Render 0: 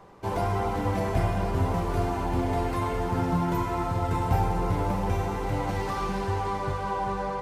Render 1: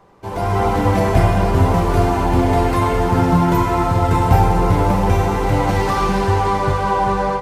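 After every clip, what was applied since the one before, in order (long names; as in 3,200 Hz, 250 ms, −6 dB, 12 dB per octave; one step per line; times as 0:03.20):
automatic gain control gain up to 12.5 dB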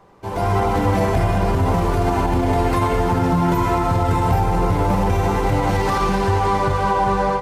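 brickwall limiter −9.5 dBFS, peak gain reduction 6 dB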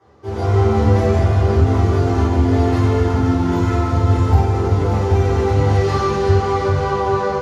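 convolution reverb RT60 0.50 s, pre-delay 3 ms, DRR −8 dB
level −15.5 dB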